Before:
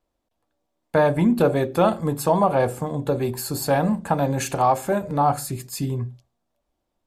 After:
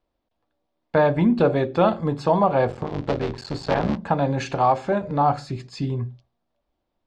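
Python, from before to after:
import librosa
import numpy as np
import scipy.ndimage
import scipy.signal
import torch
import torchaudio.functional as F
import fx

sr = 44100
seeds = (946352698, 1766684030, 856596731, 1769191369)

y = fx.cycle_switch(x, sr, every=3, mode='muted', at=(2.68, 3.96), fade=0.02)
y = scipy.signal.sosfilt(scipy.signal.butter(4, 4900.0, 'lowpass', fs=sr, output='sos'), y)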